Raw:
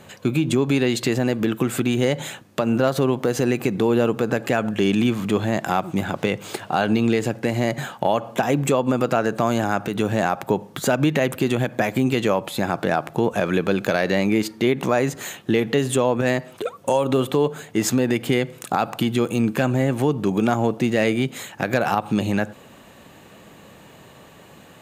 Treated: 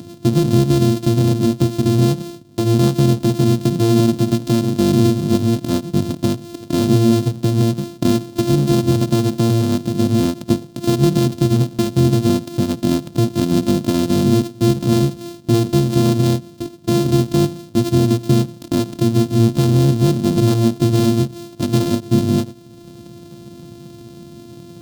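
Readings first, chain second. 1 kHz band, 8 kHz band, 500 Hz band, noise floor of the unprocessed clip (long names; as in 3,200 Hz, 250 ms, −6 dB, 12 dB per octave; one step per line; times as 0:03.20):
−4.0 dB, +3.0 dB, +0.5 dB, −47 dBFS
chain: samples sorted by size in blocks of 128 samples
upward compression, threshold −34 dBFS
graphic EQ with 10 bands 125 Hz +11 dB, 250 Hz +12 dB, 1,000 Hz −4 dB, 2,000 Hz −10 dB, 4,000 Hz +5 dB
every ending faded ahead of time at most 270 dB per second
level −2.5 dB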